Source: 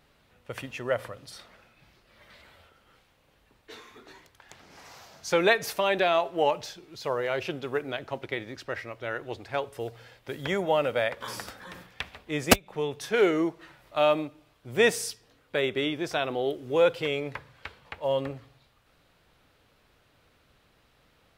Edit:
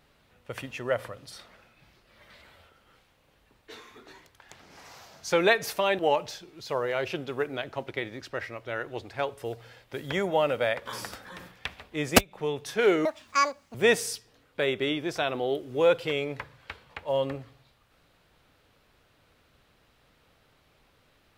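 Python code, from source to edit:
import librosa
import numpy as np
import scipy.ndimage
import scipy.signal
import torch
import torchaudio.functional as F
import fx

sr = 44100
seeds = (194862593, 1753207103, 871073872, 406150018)

y = fx.edit(x, sr, fx.cut(start_s=5.99, length_s=0.35),
    fx.speed_span(start_s=13.4, length_s=1.3, speed=1.87), tone=tone)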